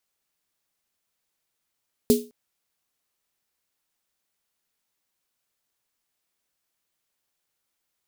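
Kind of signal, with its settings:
synth snare length 0.21 s, tones 240 Hz, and 420 Hz, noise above 3,200 Hz, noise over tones −10.5 dB, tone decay 0.29 s, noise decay 0.28 s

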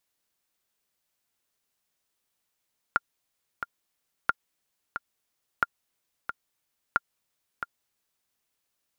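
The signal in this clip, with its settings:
click track 90 BPM, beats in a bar 2, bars 4, 1,400 Hz, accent 9.5 dB −8.5 dBFS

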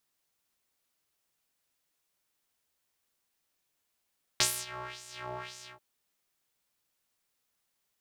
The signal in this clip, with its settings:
subtractive patch with filter wobble B2, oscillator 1 square, oscillator 2 square, interval −12 semitones, oscillator 2 level −7 dB, filter bandpass, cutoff 1,500 Hz, Q 2.1, filter envelope 1.5 octaves, filter decay 0.83 s, attack 1.7 ms, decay 0.25 s, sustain −24 dB, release 0.18 s, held 1.21 s, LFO 1.9 Hz, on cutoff 1.6 octaves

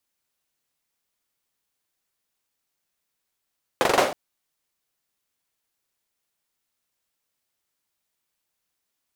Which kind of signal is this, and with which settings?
synth clap length 0.32 s, bursts 5, apart 42 ms, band 570 Hz, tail 0.44 s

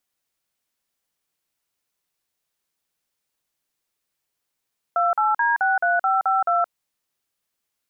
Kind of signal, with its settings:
touch tones "28D63552", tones 171 ms, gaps 45 ms, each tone −19.5 dBFS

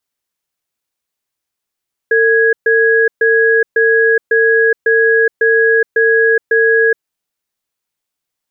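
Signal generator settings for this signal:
tone pair in a cadence 452 Hz, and 1,660 Hz, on 0.42 s, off 0.13 s, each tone −10.5 dBFS 4.92 s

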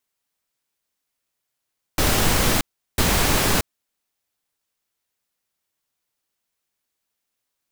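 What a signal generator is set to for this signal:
noise bursts pink, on 0.63 s, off 0.37 s, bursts 2, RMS −18.5 dBFS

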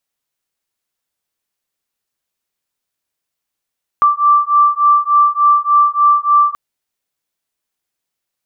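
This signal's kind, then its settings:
two tones that beat 1,170 Hz, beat 3.4 Hz, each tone −11.5 dBFS 2.53 s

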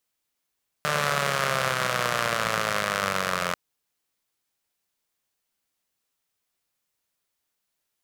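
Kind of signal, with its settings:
pulse-train model of a four-cylinder engine, changing speed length 2.69 s, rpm 4,500, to 2,600, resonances 170/580/1,200 Hz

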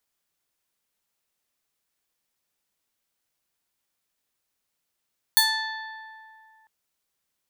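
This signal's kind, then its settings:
Karplus-Strong string A5, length 1.30 s, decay 2.44 s, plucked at 0.33, bright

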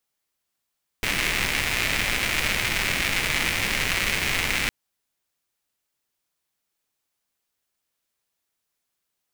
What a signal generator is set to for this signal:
rain-like ticks over hiss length 3.66 s, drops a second 250, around 2,200 Hz, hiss −4 dB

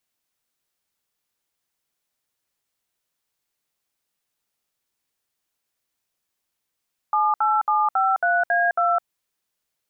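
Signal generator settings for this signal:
touch tones "78753A2", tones 210 ms, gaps 64 ms, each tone −19.5 dBFS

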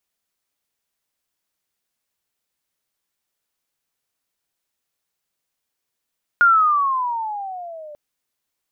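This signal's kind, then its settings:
pitch glide with a swell sine, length 1.54 s, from 1,430 Hz, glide −15.5 semitones, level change −25.5 dB, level −9 dB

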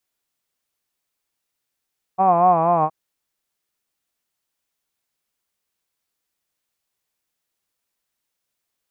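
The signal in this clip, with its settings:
vowel by formant synthesis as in hod, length 0.72 s, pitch 185 Hz, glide −2.5 semitones, vibrato 4.2 Hz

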